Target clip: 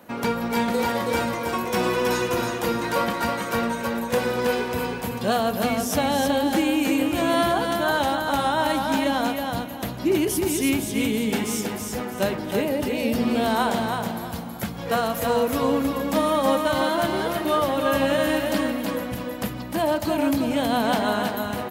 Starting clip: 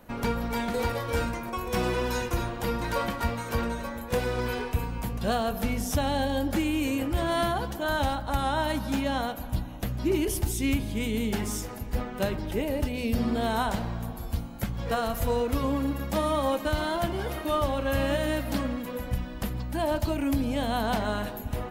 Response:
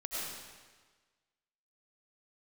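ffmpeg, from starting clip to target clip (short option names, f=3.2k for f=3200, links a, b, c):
-af "highpass=170,aecho=1:1:322|644|966|1288:0.596|0.167|0.0467|0.0131,volume=5dB"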